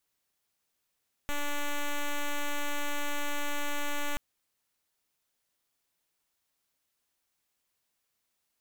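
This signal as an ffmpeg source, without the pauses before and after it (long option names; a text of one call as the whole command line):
ffmpeg -f lavfi -i "aevalsrc='0.0335*(2*lt(mod(290*t,1),0.06)-1)':duration=2.88:sample_rate=44100" out.wav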